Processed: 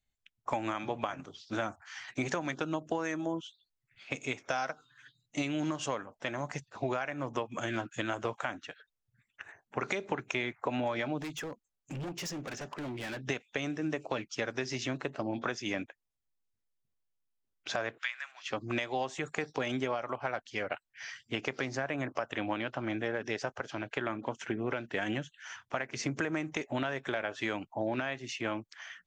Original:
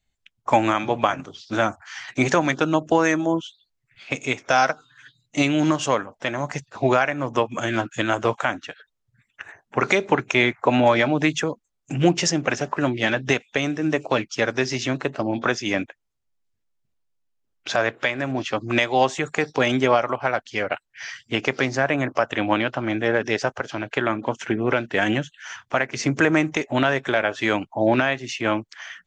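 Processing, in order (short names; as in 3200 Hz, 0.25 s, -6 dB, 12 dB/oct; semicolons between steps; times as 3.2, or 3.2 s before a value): 17.98–18.47 HPF 1300 Hz 24 dB/oct; compressor, threshold -20 dBFS, peak gain reduction 8.5 dB; 11.21–13.28 overloaded stage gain 27 dB; gain -9 dB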